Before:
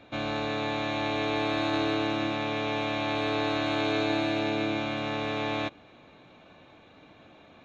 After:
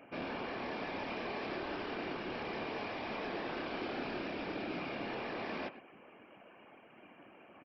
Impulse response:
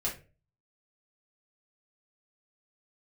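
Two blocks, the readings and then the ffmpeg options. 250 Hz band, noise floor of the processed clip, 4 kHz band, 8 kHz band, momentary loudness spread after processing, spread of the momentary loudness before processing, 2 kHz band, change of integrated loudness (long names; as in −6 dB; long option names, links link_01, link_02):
−12.0 dB, −59 dBFS, −13.5 dB, can't be measured, 18 LU, 4 LU, −9.5 dB, −11.0 dB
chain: -filter_complex "[0:a]afftfilt=real='re*between(b*sr/4096,210,3200)':imag='im*between(b*sr/4096,210,3200)':win_size=4096:overlap=0.75,asplit=2[link_01][link_02];[link_02]adelay=110,highpass=300,lowpass=3400,asoftclip=type=hard:threshold=-25dB,volume=-19dB[link_03];[link_01][link_03]amix=inputs=2:normalize=0,aresample=11025,asoftclip=type=tanh:threshold=-34.5dB,aresample=44100,afftfilt=real='hypot(re,im)*cos(2*PI*random(0))':imag='hypot(re,im)*sin(2*PI*random(1))':win_size=512:overlap=0.75,volume=3dB"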